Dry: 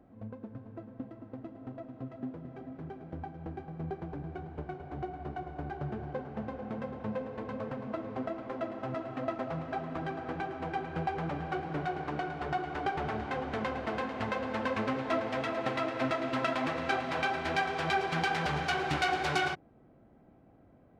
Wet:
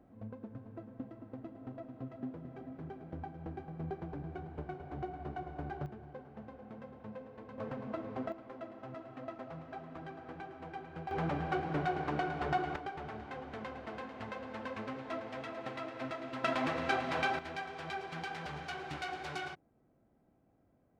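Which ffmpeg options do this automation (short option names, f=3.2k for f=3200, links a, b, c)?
-af "asetnsamples=n=441:p=0,asendcmd='5.86 volume volume -11dB;7.58 volume volume -3dB;8.32 volume volume -10dB;11.11 volume volume 0.5dB;12.76 volume volume -9.5dB;16.44 volume volume -1.5dB;17.39 volume volume -11dB',volume=-2.5dB"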